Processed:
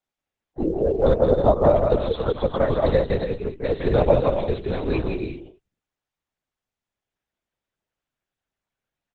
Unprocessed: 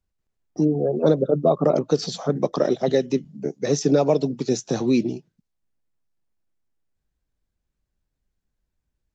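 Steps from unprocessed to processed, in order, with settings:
high-pass filter 430 Hz 12 dB per octave
on a send: bouncing-ball delay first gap 170 ms, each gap 0.6×, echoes 5
on the sum: linear-prediction vocoder at 8 kHz whisper
level +2.5 dB
Opus 16 kbit/s 48,000 Hz

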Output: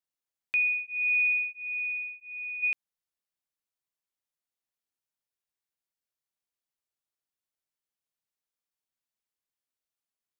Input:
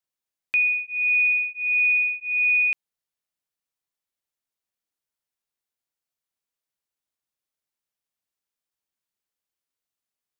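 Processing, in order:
0:01.51–0:02.62: parametric band 2,500 Hz −5 dB → −12.5 dB 1.6 octaves
level −5 dB

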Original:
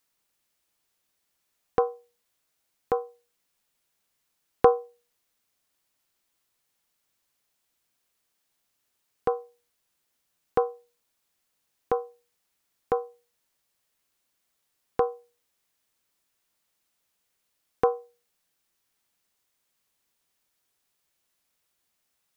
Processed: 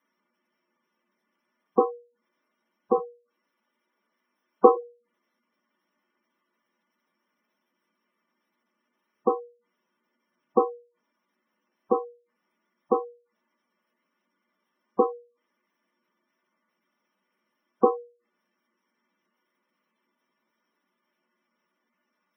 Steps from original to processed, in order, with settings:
0:02.94–0:04.75: high-pass filter 220 Hz 12 dB per octave
convolution reverb RT60 0.15 s, pre-delay 3 ms, DRR −1.5 dB
gate on every frequency bin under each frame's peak −15 dB strong
notch filter 540 Hz, Q 14
level −6.5 dB

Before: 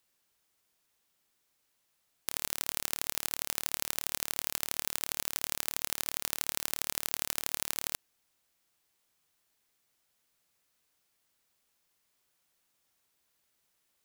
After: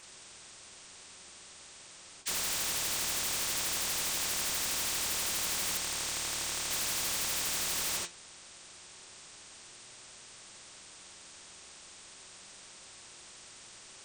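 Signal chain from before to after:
hearing-aid frequency compression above 1,600 Hz 1.5 to 1
flanger 0.3 Hz, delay 7.9 ms, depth 4.5 ms, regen +65%
on a send at −2 dB: convolution reverb, pre-delay 3 ms
0:05.77–0:06.71: on the sum: output level in coarse steps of 9 dB
sine wavefolder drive 14 dB, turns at −22 dBFS
pitch vibrato 11 Hz 28 cents
every bin compressed towards the loudest bin 2 to 1
level −2 dB

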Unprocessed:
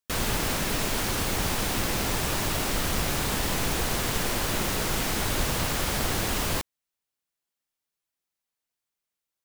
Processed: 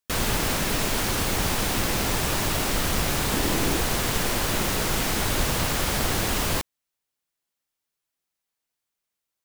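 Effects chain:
0:03.33–0:03.77: parametric band 320 Hz +7 dB
level +2.5 dB

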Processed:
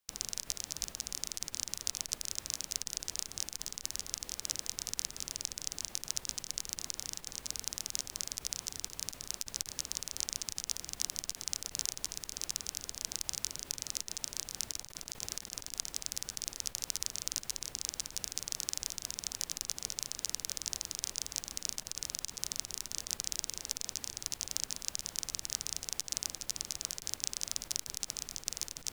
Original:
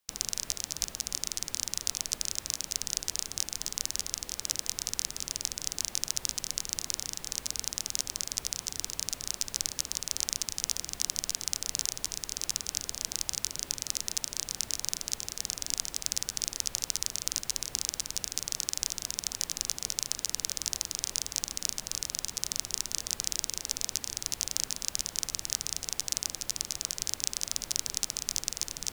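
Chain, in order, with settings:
0:14.71–0:15.72: compressor whose output falls as the input rises −38 dBFS, ratio −0.5
saturating transformer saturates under 2,200 Hz
level −3.5 dB

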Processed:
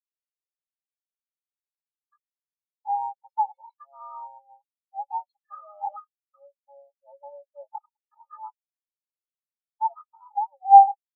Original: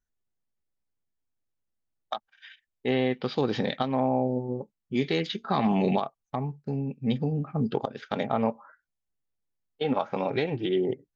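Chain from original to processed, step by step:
comb filter 2.3 ms, depth 62%
frequency shifter +420 Hz
every bin expanded away from the loudest bin 4 to 1
level +8 dB

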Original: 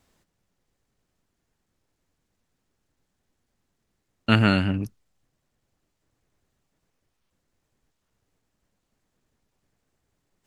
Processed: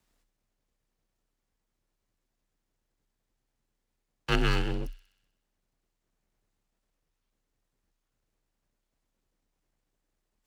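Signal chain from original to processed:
full-wave rectification
frequency shifter +31 Hz
delay with a high-pass on its return 63 ms, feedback 65%, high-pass 2,900 Hz, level −12 dB
level −5.5 dB

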